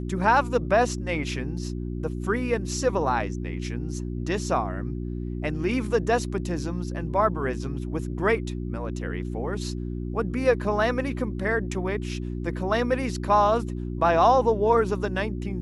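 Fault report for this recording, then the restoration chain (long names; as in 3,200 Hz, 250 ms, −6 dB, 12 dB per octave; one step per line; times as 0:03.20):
mains hum 60 Hz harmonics 6 −31 dBFS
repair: hum removal 60 Hz, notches 6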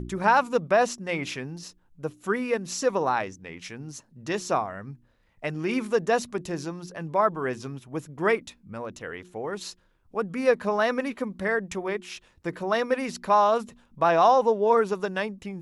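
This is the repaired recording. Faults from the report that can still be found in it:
none of them is left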